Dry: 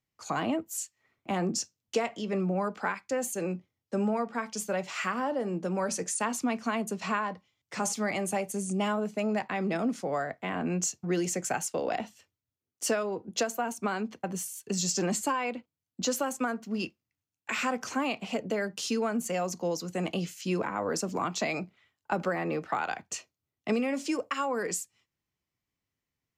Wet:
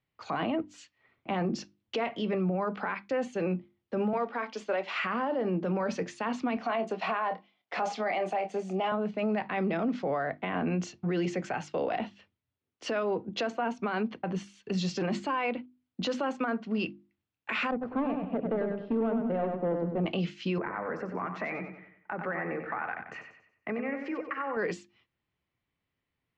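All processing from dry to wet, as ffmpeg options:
-filter_complex "[0:a]asettb=1/sr,asplit=3[a][b][c];[a]atrim=end=4.134[d];[b]atrim=start=4.13:end=4.97,asetpts=PTS-STARTPTS,afade=t=in:d=0.004:c=qsin,afade=t=out:st=0.836:d=0.004:c=qsin,highpass=f=280:w=0.5412,highpass=f=280:w=1.3066,acrusher=bits=7:mode=log:mix=0:aa=0.000001[e];[c]atrim=start=4.966[f];[d][e]acrossfade=d=0.004:c1=hsin:c2=qsin[g];[g][f]acrossfade=d=0.004:c1=qsin:c2=hsin,asettb=1/sr,asplit=3[h][i][j];[h]atrim=end=6.574[k];[i]atrim=start=6.57:end=8.92,asetpts=PTS-STARTPTS,afade=t=in:d=0.004:c=qsin,afade=t=out:st=2.346:d=0.004:c=qsin,highpass=320,equalizer=f=720:t=o:w=0.34:g=11.5,asplit=2[l][m];[m]adelay=27,volume=-10dB[n];[l][n]amix=inputs=2:normalize=0,atrim=end_sample=103635[o];[j]atrim=start=8.916[p];[k][o]acrossfade=d=0.004:c1=hsin:c2=qsin[q];[q][p]acrossfade=d=0.004:c1=qsin:c2=hsin,asettb=1/sr,asplit=3[r][s][t];[r]atrim=end=17.714[u];[s]atrim=start=17.71:end=20.06,asetpts=PTS-STARTPTS,afade=t=in:d=0.004:c=qsin,afade=t=out:st=2.346:d=0.004:c=qsin,volume=25.5dB,asoftclip=hard,volume=-25.5dB,adynamicsmooth=sensitivity=0.5:basefreq=560,asplit=2[v][w];[w]adelay=98,lowpass=f=4.3k:p=1,volume=-5dB,asplit=2[x][y];[y]adelay=98,lowpass=f=4.3k:p=1,volume=0.39,asplit=2[z][aa];[aa]adelay=98,lowpass=f=4.3k:p=1,volume=0.39,asplit=2[ab][ac];[ac]adelay=98,lowpass=f=4.3k:p=1,volume=0.39,asplit=2[ad][ae];[ae]adelay=98,lowpass=f=4.3k:p=1,volume=0.39[af];[v][x][z][ab][ad][af]amix=inputs=6:normalize=0,atrim=end_sample=103635[ag];[t]atrim=start=20.056[ah];[u][ag]acrossfade=d=0.004:c1=hsin:c2=qsin[ai];[ai][ah]acrossfade=d=0.004:c1=qsin:c2=hsin,asettb=1/sr,asplit=3[aj][ak][al];[aj]atrim=end=20.584[am];[ak]atrim=start=20.58:end=24.57,asetpts=PTS-STARTPTS,afade=t=in:d=0.004:c=qsin,afade=t=out:st=3.986:d=0.004:c=qsin,highshelf=f=2.6k:t=q:w=3:g=-10.5,acompressor=threshold=-43dB:ratio=2:attack=3.2:release=140:knee=1:detection=peak,aecho=1:1:93|186|279|372|465:0.422|0.173|0.0709|0.0291|0.0119,atrim=end_sample=175959[an];[al]atrim=start=24.566[ao];[am][an]acrossfade=d=0.004:c1=hsin:c2=qsin[ap];[ap][ao]acrossfade=d=0.004:c1=qsin:c2=hsin,lowpass=f=3.7k:w=0.5412,lowpass=f=3.7k:w=1.3066,bandreject=f=50:t=h:w=6,bandreject=f=100:t=h:w=6,bandreject=f=150:t=h:w=6,bandreject=f=200:t=h:w=6,bandreject=f=250:t=h:w=6,bandreject=f=300:t=h:w=6,bandreject=f=350:t=h:w=6,alimiter=level_in=3dB:limit=-24dB:level=0:latency=1:release=24,volume=-3dB,volume=4.5dB"

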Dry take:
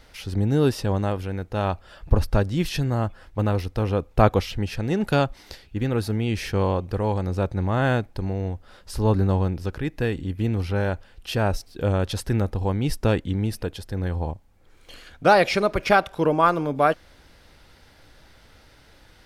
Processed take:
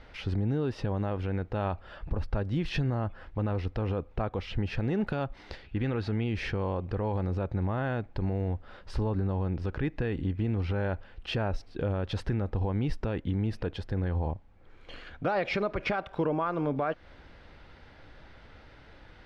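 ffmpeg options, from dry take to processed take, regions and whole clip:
-filter_complex "[0:a]asettb=1/sr,asplit=3[a][b][c];[a]atrim=end=5.644[d];[b]atrim=start=5.64:end=6.24,asetpts=PTS-STARTPTS,afade=t=in:d=0.004:c=qsin,afade=t=out:st=0.596:d=0.004:c=qsin,lowpass=7.5k,equalizer=f=2.7k:t=o:w=2.5:g=4.5[e];[c]atrim=start=6.236[f];[d][e]acrossfade=d=0.004:c1=hsin:c2=qsin[g];[g][f]acrossfade=d=0.004:c1=qsin:c2=hsin,lowpass=2.8k,acompressor=threshold=-24dB:ratio=5,alimiter=limit=-21dB:level=0:latency=1:release=41,volume=1dB"

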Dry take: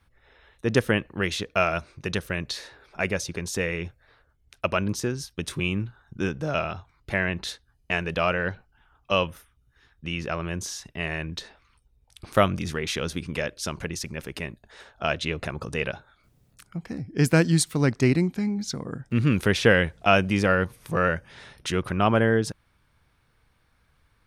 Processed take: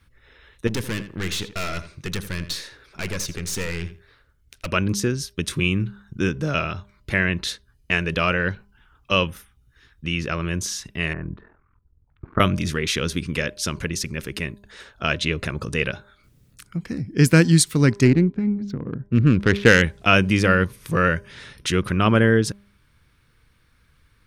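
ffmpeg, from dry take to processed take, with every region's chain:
-filter_complex "[0:a]asettb=1/sr,asplit=3[a][b][c];[a]atrim=end=0.674[d];[b]atrim=start=0.67:end=4.68,asetpts=PTS-STARTPTS,afade=t=in:d=0.004:c=qsin,afade=t=out:st=4.006:d=0.004:c=qsin,highshelf=f=4k:g=3.5,aeval=exprs='(tanh(25.1*val(0)+0.55)-tanh(0.55))/25.1':c=same,asplit=2[e][f];[f]adelay=82,lowpass=f=4.4k:p=1,volume=-12.5dB,asplit=2[g][h];[h]adelay=82,lowpass=f=4.4k:p=1,volume=0.18[i];[e][g][i]amix=inputs=3:normalize=0,atrim=end_sample=176841[j];[c]atrim=start=4.676[k];[d][j]acrossfade=d=0.004:c1=hsin:c2=qsin[l];[l][k]acrossfade=d=0.004:c1=qsin:c2=hsin,asettb=1/sr,asplit=3[m][n][o];[m]atrim=end=11.134[p];[n]atrim=start=11.13:end=12.4,asetpts=PTS-STARTPTS,afade=t=in:d=0.004:c=qsin,afade=t=out:st=1.266:d=0.004:c=qsin,lowpass=f=1.4k:w=0.5412,lowpass=f=1.4k:w=1.3066,bandreject=f=520:w=5.1,aeval=exprs='val(0)*sin(2*PI*21*n/s)':c=same[q];[o]atrim=start=12.396[r];[p][q]acrossfade=d=0.004:c1=hsin:c2=qsin[s];[s][r]acrossfade=d=0.004:c1=qsin:c2=hsin,asettb=1/sr,asplit=3[t][u][v];[t]atrim=end=18.054[w];[u]atrim=start=18.05:end=19.82,asetpts=PTS-STARTPTS,afade=t=in:d=0.004:c=qsin,afade=t=out:st=1.766:d=0.004:c=qsin,highshelf=f=2.5k:g=8.5,adynamicsmooth=sensitivity=0.5:basefreq=720[x];[v]atrim=start=19.816[y];[w][x]acrossfade=d=0.004:c1=hsin:c2=qsin[z];[z][y]acrossfade=d=0.004:c1=qsin:c2=hsin,equalizer=f=750:t=o:w=0.83:g=-10.5,bandreject=f=201.5:t=h:w=4,bandreject=f=403:t=h:w=4,bandreject=f=604.5:t=h:w=4,bandreject=f=806:t=h:w=4,bandreject=f=1.0075k:t=h:w=4,volume=6dB"

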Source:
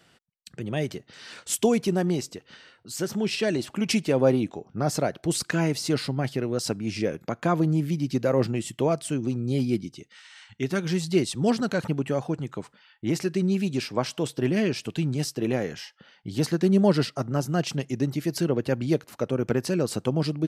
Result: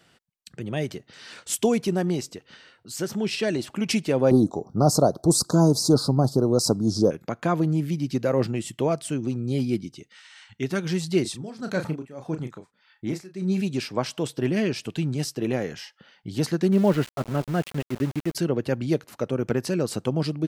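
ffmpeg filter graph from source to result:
-filter_complex "[0:a]asettb=1/sr,asplit=3[a][b][c];[a]atrim=end=4.314[d];[b]atrim=start=4.31:end=7.11,asetpts=PTS-STARTPTS,afade=t=in:d=0.004:c=qsin,afade=t=out:st=2.796:d=0.004:c=qsin,acontrast=79,asuperstop=centerf=2300:order=8:qfactor=0.76[e];[c]atrim=start=7.106[f];[d][e]acrossfade=d=0.004:c1=hsin:c2=qsin[g];[g][f]acrossfade=d=0.004:c1=qsin:c2=hsin,asettb=1/sr,asplit=3[h][i][j];[h]atrim=end=11.224[k];[i]atrim=start=11.22:end=13.61,asetpts=PTS-STARTPTS,afade=t=in:d=0.004:c=qsin,afade=t=out:st=2.386:d=0.004:c=qsin,tremolo=f=1.7:d=0.88,bandreject=f=2.9k:w=10,asplit=2[l][m];[m]adelay=32,volume=-8dB[n];[l][n]amix=inputs=2:normalize=0,atrim=end_sample=105399[o];[j]atrim=start=13.606[p];[k][o]acrossfade=d=0.004:c1=hsin:c2=qsin[q];[q][p]acrossfade=d=0.004:c1=qsin:c2=hsin,asettb=1/sr,asplit=3[r][s][t];[r]atrim=end=16.724[u];[s]atrim=start=16.72:end=18.35,asetpts=PTS-STARTPTS,afade=t=in:d=0.004:c=qsin,afade=t=out:st=1.626:d=0.004:c=qsin,lowpass=f=3.2k:w=0.5412,lowpass=f=3.2k:w=1.3066,aeval=exprs='val(0)*gte(abs(val(0)),0.0224)':c=same[v];[t]atrim=start=18.346[w];[u][v]acrossfade=d=0.004:c1=hsin:c2=qsin[x];[x][w]acrossfade=d=0.004:c1=qsin:c2=hsin"

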